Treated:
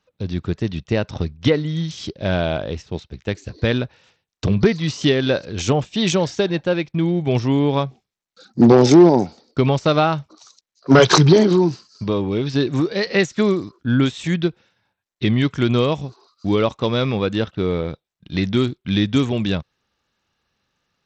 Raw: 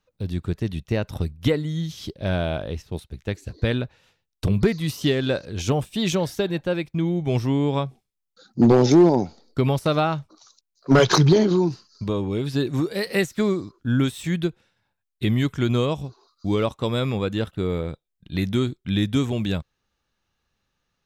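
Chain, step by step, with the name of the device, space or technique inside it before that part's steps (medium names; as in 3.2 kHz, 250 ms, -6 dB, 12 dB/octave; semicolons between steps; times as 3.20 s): Bluetooth headset (high-pass 110 Hz 6 dB/octave; resampled via 16 kHz; trim +5 dB; SBC 64 kbps 32 kHz)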